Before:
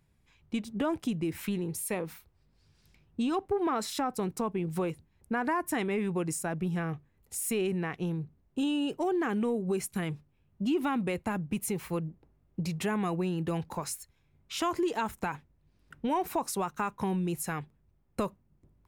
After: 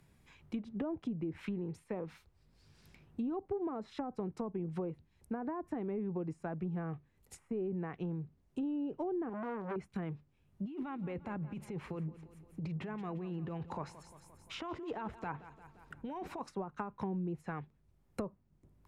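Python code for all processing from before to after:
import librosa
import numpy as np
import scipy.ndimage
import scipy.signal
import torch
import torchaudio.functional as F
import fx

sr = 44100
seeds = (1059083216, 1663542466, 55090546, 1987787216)

y = fx.chain(x, sr, fx.zero_step(step_db=-38.0),
    fx.low_shelf(hz=97.0, db=-9.0),
    fx.transformer_sat(knee_hz=1200.0), at=(9.29, 9.76))
y = fx.chain(y, sr, fx.high_shelf(hz=2100.0, db=-8.5),
    fx.over_compress(threshold_db=-35.0, ratio=-1.0),
    fx.echo_feedback(ms=174, feedback_pct=51, wet_db=-16), at=(10.65, 16.41))
y = fx.high_shelf(y, sr, hz=3600.0, db=4.0)
y = fx.env_lowpass_down(y, sr, base_hz=660.0, full_db=-26.5)
y = fx.band_squash(y, sr, depth_pct=40)
y = F.gain(torch.from_numpy(y), -6.0).numpy()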